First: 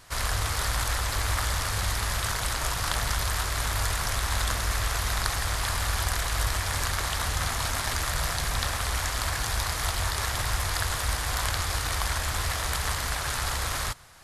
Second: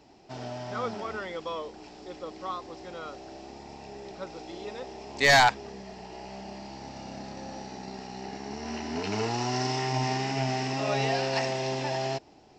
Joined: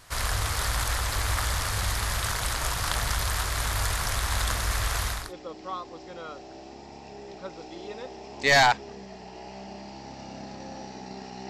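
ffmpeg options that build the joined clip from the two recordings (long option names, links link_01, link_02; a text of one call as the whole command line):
ffmpeg -i cue0.wav -i cue1.wav -filter_complex "[0:a]apad=whole_dur=11.49,atrim=end=11.49,atrim=end=5.33,asetpts=PTS-STARTPTS[link_01];[1:a]atrim=start=1.8:end=8.26,asetpts=PTS-STARTPTS[link_02];[link_01][link_02]acrossfade=duration=0.3:curve1=tri:curve2=tri" out.wav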